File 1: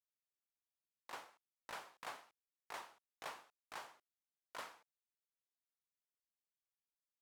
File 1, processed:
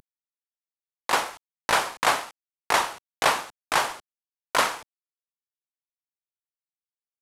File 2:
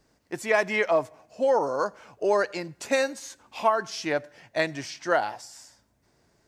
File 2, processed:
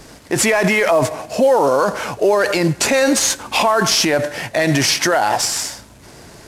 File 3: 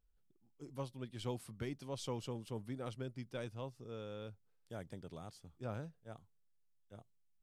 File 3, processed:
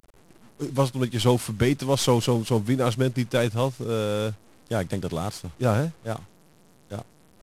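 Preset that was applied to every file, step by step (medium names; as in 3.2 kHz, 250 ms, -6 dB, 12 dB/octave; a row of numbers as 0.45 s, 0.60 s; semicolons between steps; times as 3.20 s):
CVSD coder 64 kbps; in parallel at +1.5 dB: compressor with a negative ratio -37 dBFS, ratio -1; on the sum: peak limiter -19 dBFS; peak normalisation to -6 dBFS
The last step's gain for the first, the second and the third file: +20.0 dB, +13.0 dB, +14.0 dB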